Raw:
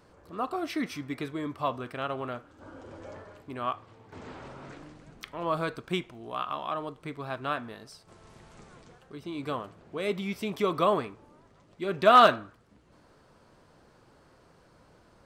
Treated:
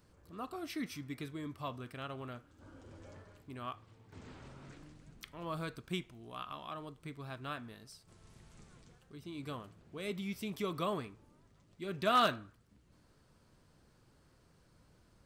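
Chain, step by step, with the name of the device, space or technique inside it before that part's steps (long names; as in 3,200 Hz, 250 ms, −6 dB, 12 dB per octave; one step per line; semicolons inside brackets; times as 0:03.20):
smiley-face EQ (low-shelf EQ 200 Hz +5 dB; parametric band 700 Hz −7 dB 2.5 octaves; high-shelf EQ 8,400 Hz +7.5 dB)
level −6.5 dB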